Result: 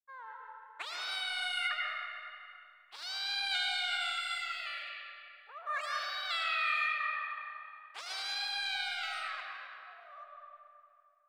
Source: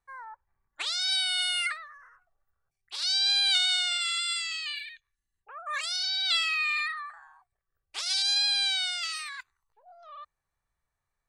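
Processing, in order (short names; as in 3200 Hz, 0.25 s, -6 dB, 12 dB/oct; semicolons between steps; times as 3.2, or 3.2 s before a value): G.711 law mismatch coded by A; three-band isolator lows -21 dB, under 290 Hz, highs -15 dB, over 2100 Hz; reverb RT60 2.5 s, pre-delay 70 ms, DRR -1.5 dB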